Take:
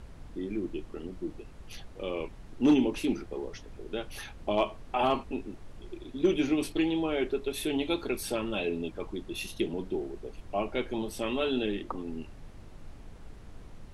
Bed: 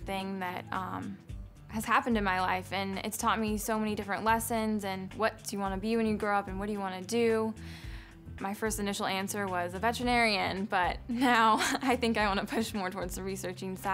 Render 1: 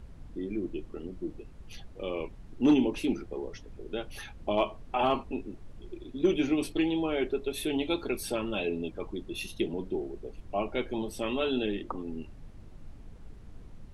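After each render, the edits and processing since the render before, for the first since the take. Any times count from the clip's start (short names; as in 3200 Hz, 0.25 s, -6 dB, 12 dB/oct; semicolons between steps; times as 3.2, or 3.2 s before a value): denoiser 6 dB, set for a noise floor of -48 dBFS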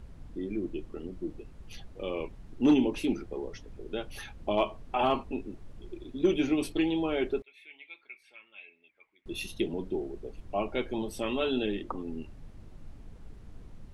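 7.42–9.26 band-pass 2200 Hz, Q 11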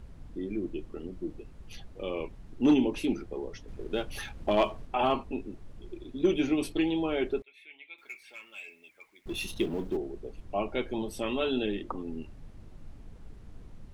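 3.68–4.87 sample leveller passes 1; 7.98–9.97 G.711 law mismatch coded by mu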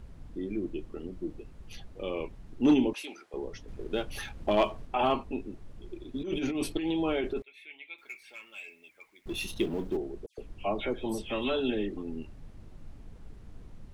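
2.93–3.34 HPF 820 Hz; 6.14–7.98 negative-ratio compressor -30 dBFS; 10.26–11.97 dispersion lows, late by 0.12 s, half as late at 2400 Hz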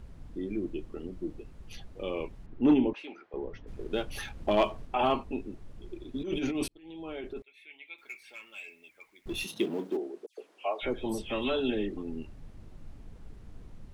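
2.46–3.67 LPF 2400 Hz; 6.68–8.12 fade in; 9.43–10.82 HPF 140 Hz -> 520 Hz 24 dB/oct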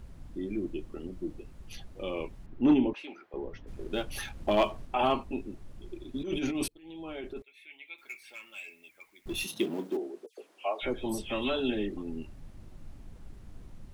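high shelf 7500 Hz +6.5 dB; notch 450 Hz, Q 12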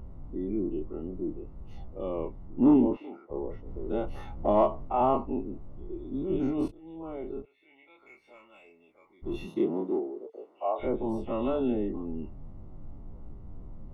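spectral dilation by 60 ms; polynomial smoothing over 65 samples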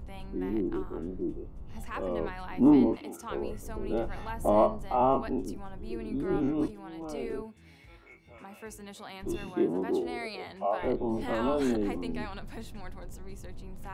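add bed -12.5 dB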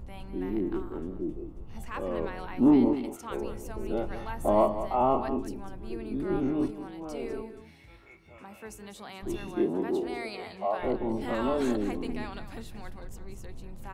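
echo 0.197 s -11.5 dB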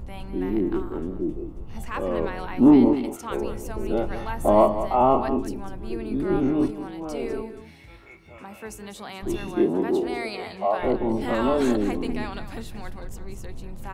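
gain +6 dB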